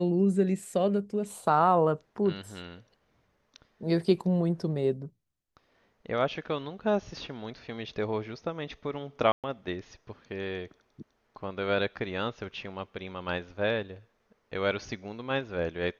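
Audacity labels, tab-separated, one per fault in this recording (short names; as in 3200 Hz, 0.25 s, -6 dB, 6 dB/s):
9.320000	9.440000	gap 0.117 s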